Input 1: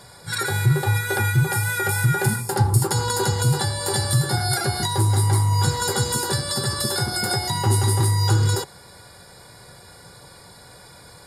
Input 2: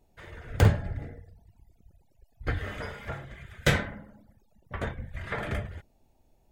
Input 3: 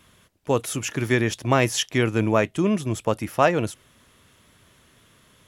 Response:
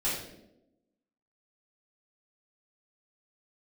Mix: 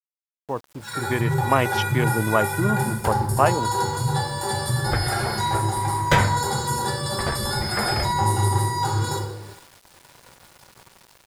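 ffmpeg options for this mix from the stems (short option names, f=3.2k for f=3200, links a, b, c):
-filter_complex "[0:a]flanger=delay=8.9:depth=5.2:regen=81:speed=0.4:shape=sinusoidal,adelay=550,volume=-13.5dB,asplit=3[a][b][c];[b]volume=-3dB[d];[c]volume=-17dB[e];[1:a]adelay=2450,volume=-4dB[f];[2:a]afwtdn=0.0398,volume=-10dB,asplit=2[g][h];[h]apad=whole_len=395391[i];[f][i]sidechaincompress=threshold=-44dB:ratio=8:attack=40:release=304[j];[3:a]atrim=start_sample=2205[k];[d][k]afir=irnorm=-1:irlink=0[l];[e]aecho=0:1:446:1[m];[a][j][g][l][m]amix=inputs=5:normalize=0,equalizer=f=980:w=1.5:g=8,dynaudnorm=f=160:g=13:m=7.5dB,aeval=exprs='val(0)*gte(abs(val(0)),0.00794)':c=same"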